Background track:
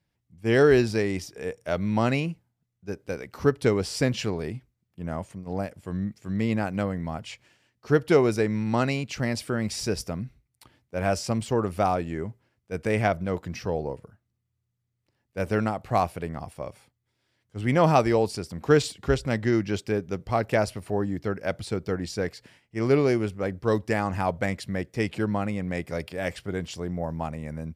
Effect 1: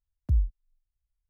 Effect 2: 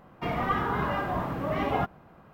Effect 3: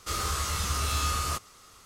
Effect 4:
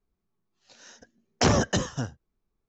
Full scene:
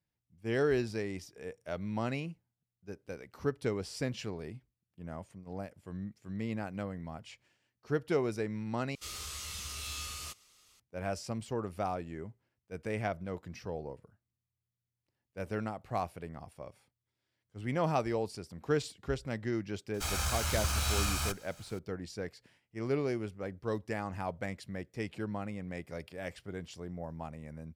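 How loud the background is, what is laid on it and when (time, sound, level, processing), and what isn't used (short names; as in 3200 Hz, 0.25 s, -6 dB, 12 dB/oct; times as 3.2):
background track -11 dB
8.95 replace with 3 -16.5 dB + resonant high shelf 1900 Hz +7.5 dB, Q 1.5
19.94 add 3 -1.5 dB + minimum comb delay 1.3 ms
not used: 1, 2, 4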